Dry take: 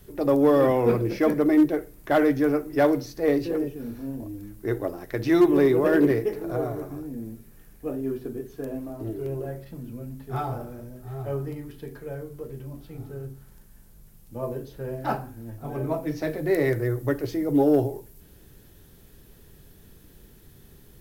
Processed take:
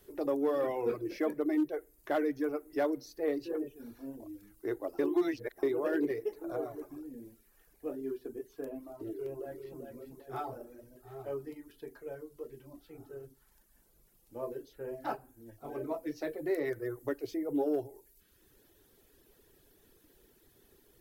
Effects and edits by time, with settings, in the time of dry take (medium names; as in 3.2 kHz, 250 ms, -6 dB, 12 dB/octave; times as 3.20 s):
4.99–5.63 s: reverse
9.12–9.81 s: echo throw 390 ms, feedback 40%, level -6 dB
whole clip: reverb removal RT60 0.83 s; resonant low shelf 240 Hz -9 dB, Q 1.5; compression 1.5:1, threshold -27 dBFS; trim -7 dB